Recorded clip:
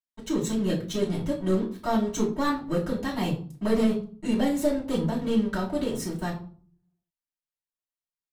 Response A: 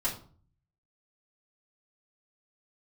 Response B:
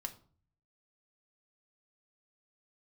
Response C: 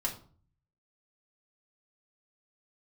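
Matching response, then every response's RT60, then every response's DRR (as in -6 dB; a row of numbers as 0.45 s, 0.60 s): A; 0.45 s, 0.45 s, 0.45 s; -8.5 dB, 4.5 dB, -2.5 dB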